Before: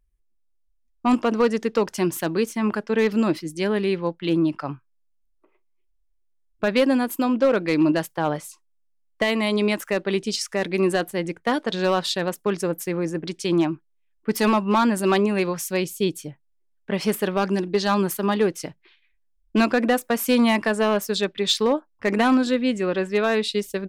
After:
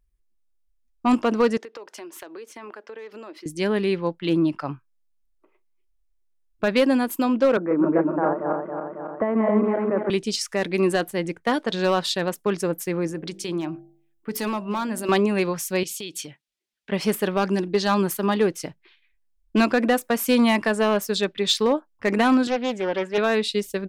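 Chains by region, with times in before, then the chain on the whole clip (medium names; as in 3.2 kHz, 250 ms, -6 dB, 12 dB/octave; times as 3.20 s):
1.57–3.46 s: high-pass 340 Hz 24 dB/octave + treble shelf 5 kHz -10.5 dB + compression 8:1, threshold -36 dBFS
7.57–10.10 s: backward echo that repeats 137 ms, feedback 65%, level -1 dB + elliptic band-pass 190–1400 Hz, stop band 50 dB + upward compressor, threshold -23 dBFS
13.07–15.09 s: treble shelf 12 kHz +7.5 dB + compression 2:1, threshold -28 dBFS + de-hum 48.03 Hz, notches 17
15.83–16.92 s: compression 16:1, threshold -31 dBFS + frequency weighting D
22.47–23.18 s: high-pass 57 Hz + tone controls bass -7 dB, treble -7 dB + loudspeaker Doppler distortion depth 0.36 ms
whole clip: none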